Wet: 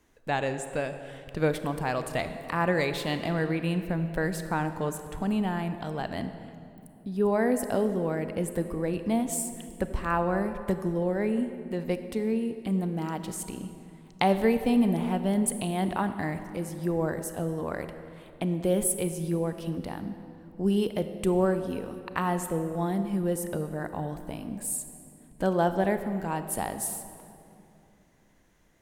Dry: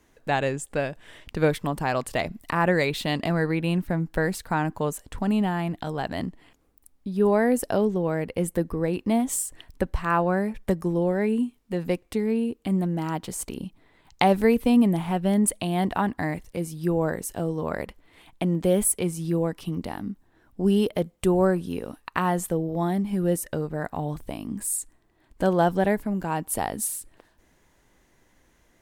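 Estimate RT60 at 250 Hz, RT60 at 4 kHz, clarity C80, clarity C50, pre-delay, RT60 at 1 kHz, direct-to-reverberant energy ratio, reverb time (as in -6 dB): 3.5 s, 1.8 s, 10.5 dB, 9.5 dB, 28 ms, 2.5 s, 9.0 dB, 2.7 s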